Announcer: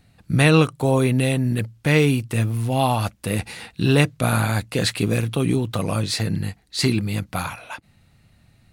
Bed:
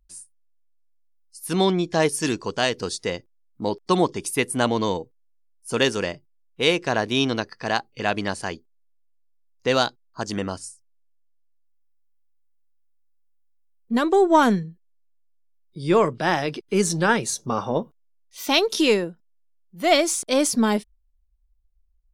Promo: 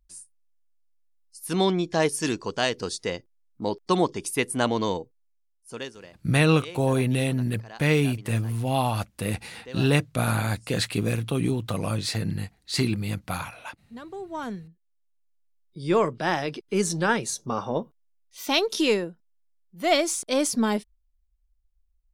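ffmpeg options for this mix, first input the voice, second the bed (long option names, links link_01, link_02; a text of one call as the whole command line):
ffmpeg -i stem1.wav -i stem2.wav -filter_complex "[0:a]adelay=5950,volume=-4.5dB[link_01];[1:a]volume=14dB,afade=type=out:start_time=4.98:duration=0.95:silence=0.133352,afade=type=in:start_time=14.32:duration=1.14:silence=0.149624[link_02];[link_01][link_02]amix=inputs=2:normalize=0" out.wav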